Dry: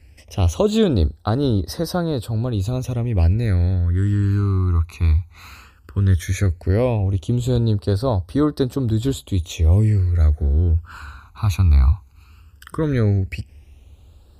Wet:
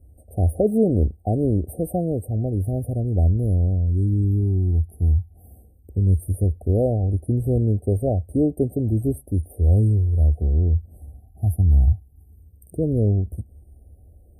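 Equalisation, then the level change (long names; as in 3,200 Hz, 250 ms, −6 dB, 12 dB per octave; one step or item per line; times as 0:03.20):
linear-phase brick-wall band-stop 790–8,300 Hz
−1.5 dB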